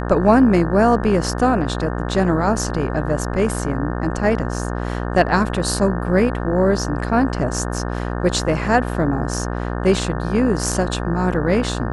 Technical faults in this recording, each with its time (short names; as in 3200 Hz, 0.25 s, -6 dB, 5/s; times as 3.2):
buzz 60 Hz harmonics 30 -24 dBFS